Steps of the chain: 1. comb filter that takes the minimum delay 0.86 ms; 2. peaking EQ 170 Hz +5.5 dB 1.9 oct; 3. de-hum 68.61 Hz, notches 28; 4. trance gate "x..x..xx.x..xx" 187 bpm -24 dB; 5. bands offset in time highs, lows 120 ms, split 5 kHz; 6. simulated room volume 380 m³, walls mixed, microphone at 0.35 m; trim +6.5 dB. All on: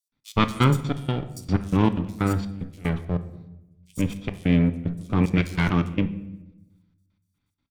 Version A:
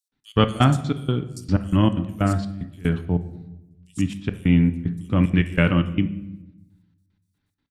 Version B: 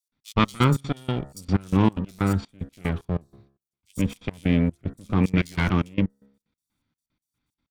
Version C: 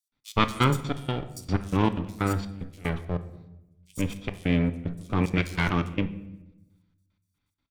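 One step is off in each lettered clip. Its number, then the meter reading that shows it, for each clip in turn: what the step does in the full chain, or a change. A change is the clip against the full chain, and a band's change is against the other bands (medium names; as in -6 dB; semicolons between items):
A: 1, 8 kHz band -2.0 dB; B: 6, momentary loudness spread change -3 LU; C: 2, 250 Hz band -4.5 dB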